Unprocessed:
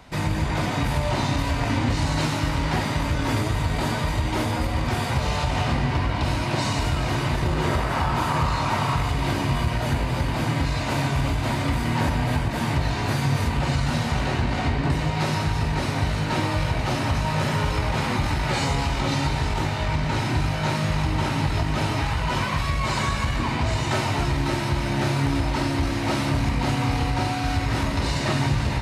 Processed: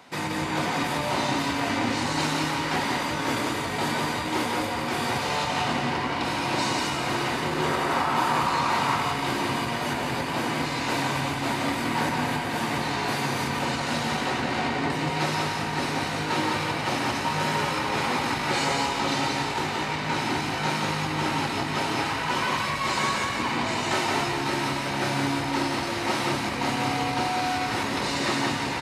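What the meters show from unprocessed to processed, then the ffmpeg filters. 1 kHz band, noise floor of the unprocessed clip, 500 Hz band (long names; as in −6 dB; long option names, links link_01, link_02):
+1.5 dB, −26 dBFS, −0.5 dB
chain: -af "highpass=250,bandreject=frequency=620:width=12,aecho=1:1:175:0.631"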